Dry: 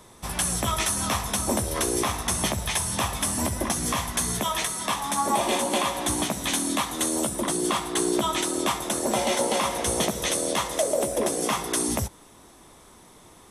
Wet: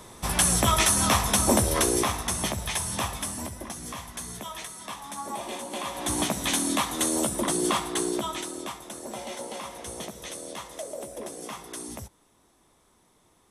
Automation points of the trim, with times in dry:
1.67 s +4 dB
2.34 s -3 dB
3.05 s -3 dB
3.59 s -11 dB
5.70 s -11 dB
6.21 s 0 dB
7.75 s 0 dB
8.82 s -12.5 dB

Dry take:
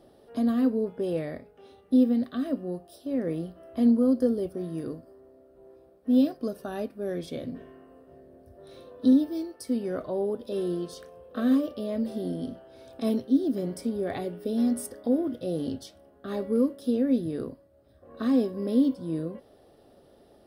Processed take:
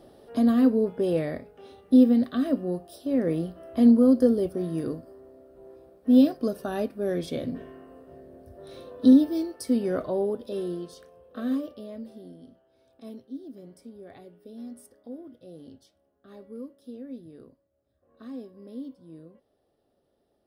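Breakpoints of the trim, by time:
9.99 s +4 dB
10.97 s -5 dB
11.62 s -5 dB
12.40 s -15.5 dB

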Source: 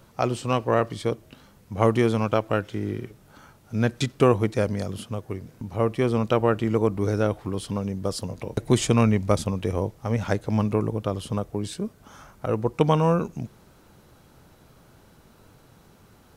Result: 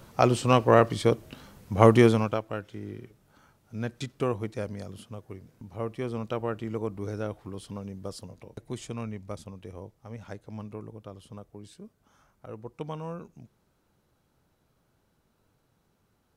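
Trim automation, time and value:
2.06 s +3 dB
2.46 s -10 dB
8.09 s -10 dB
8.69 s -16.5 dB

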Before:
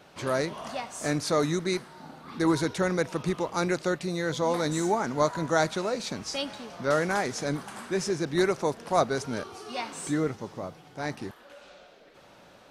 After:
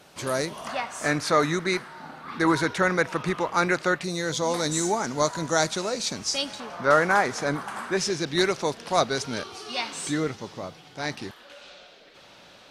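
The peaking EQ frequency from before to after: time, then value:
peaking EQ +9.5 dB 2 oct
11 kHz
from 0.67 s 1.6 kHz
from 4.04 s 6.6 kHz
from 6.60 s 1.2 kHz
from 7.97 s 3.8 kHz

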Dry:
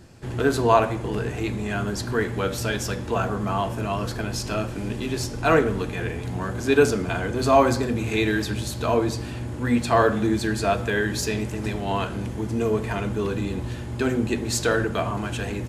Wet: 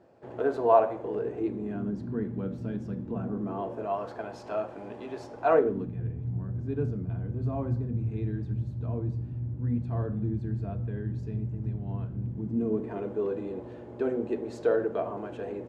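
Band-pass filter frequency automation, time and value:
band-pass filter, Q 1.9
0.95 s 600 Hz
2.06 s 200 Hz
3.21 s 200 Hz
3.98 s 700 Hz
5.52 s 700 Hz
5.97 s 120 Hz
12.21 s 120 Hz
13.13 s 490 Hz

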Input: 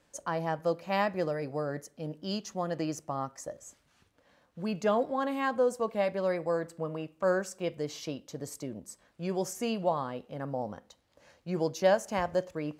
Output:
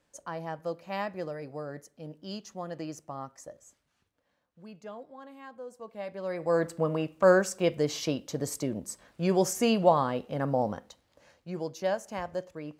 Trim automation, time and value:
3.42 s -5 dB
4.98 s -16.5 dB
5.63 s -16.5 dB
6.30 s -4.5 dB
6.61 s +7 dB
10.69 s +7 dB
11.62 s -5 dB

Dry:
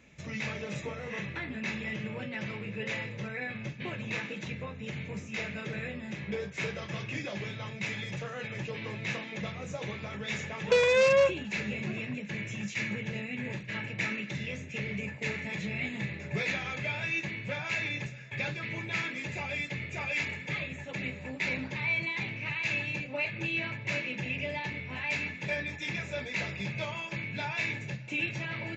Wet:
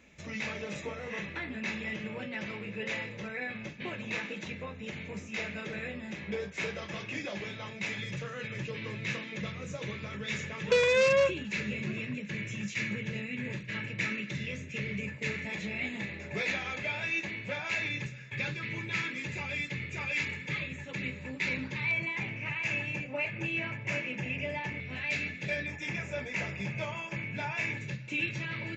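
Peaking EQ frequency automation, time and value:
peaking EQ -11 dB 0.42 oct
130 Hz
from 7.98 s 760 Hz
from 15.45 s 140 Hz
from 17.86 s 700 Hz
from 21.91 s 4 kHz
from 24.80 s 950 Hz
from 25.66 s 4 kHz
from 27.77 s 740 Hz

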